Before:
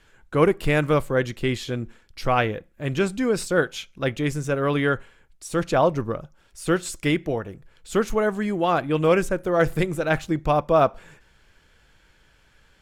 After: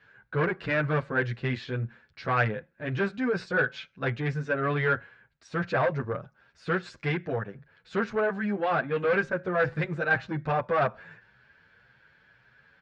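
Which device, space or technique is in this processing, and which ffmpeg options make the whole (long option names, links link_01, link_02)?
barber-pole flanger into a guitar amplifier: -filter_complex "[0:a]asplit=2[link_01][link_02];[link_02]adelay=8.6,afreqshift=1.8[link_03];[link_01][link_03]amix=inputs=2:normalize=1,asoftclip=type=tanh:threshold=-19.5dB,highpass=110,equalizer=frequency=120:width_type=q:width=4:gain=6,equalizer=frequency=320:width_type=q:width=4:gain=-7,equalizer=frequency=1600:width_type=q:width=4:gain=9,equalizer=frequency=3200:width_type=q:width=4:gain=-6,lowpass=frequency=4200:width=0.5412,lowpass=frequency=4200:width=1.3066"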